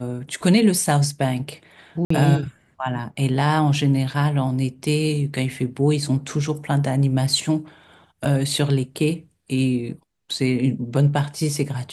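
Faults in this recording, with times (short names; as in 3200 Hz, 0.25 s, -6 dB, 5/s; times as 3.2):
2.05–2.1 gap 54 ms
8.25 gap 4.7 ms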